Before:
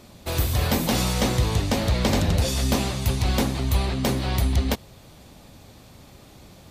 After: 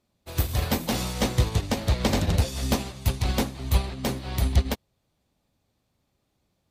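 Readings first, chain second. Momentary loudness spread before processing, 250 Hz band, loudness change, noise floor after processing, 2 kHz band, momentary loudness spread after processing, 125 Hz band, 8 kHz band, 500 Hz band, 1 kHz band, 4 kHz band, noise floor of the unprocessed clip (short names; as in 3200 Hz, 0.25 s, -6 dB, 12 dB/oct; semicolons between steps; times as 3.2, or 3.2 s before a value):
3 LU, -3.5 dB, -3.0 dB, -75 dBFS, -3.5 dB, 6 LU, -2.5 dB, -4.0 dB, -3.5 dB, -3.5 dB, -4.0 dB, -49 dBFS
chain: in parallel at -6 dB: one-sided clip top -19.5 dBFS; on the sum: upward expander 2.5:1, over -33 dBFS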